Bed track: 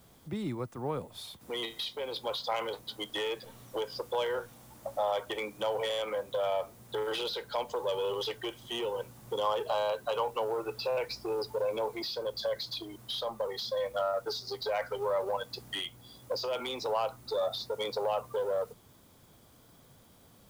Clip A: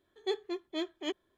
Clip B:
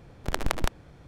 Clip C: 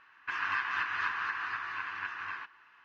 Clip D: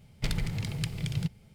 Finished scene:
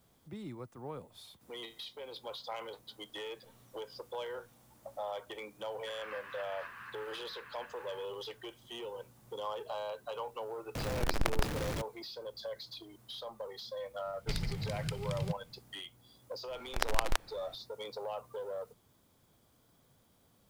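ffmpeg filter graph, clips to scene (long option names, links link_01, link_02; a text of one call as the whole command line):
ffmpeg -i bed.wav -i cue0.wav -i cue1.wav -i cue2.wav -i cue3.wav -filter_complex "[2:a]asplit=2[link_01][link_02];[0:a]volume=-9dB[link_03];[link_01]aeval=exprs='val(0)+0.5*0.0501*sgn(val(0))':channel_layout=same[link_04];[link_02]equalizer=frequency=130:width=0.4:gain=-13.5[link_05];[3:a]atrim=end=2.84,asetpts=PTS-STARTPTS,volume=-14.5dB,afade=type=in:duration=0.004:curve=hsin,afade=type=out:start_time=2.836:duration=0.004:curve=hsin,adelay=5590[link_06];[link_04]atrim=end=1.07,asetpts=PTS-STARTPTS,volume=-5.5dB,afade=type=in:duration=0.004:curve=hsin,afade=type=out:start_time=1.066:duration=0.004:curve=hsin,adelay=10750[link_07];[4:a]atrim=end=1.54,asetpts=PTS-STARTPTS,volume=-5.5dB,afade=type=in:duration=0.004:curve=hsin,afade=type=out:start_time=1.536:duration=0.004:curve=hsin,adelay=14050[link_08];[link_05]atrim=end=1.07,asetpts=PTS-STARTPTS,volume=-1dB,afade=type=in:duration=0.004:curve=hsin,afade=type=out:start_time=1.066:duration=0.004:curve=hsin,adelay=16480[link_09];[link_03][link_06][link_07][link_08][link_09]amix=inputs=5:normalize=0" out.wav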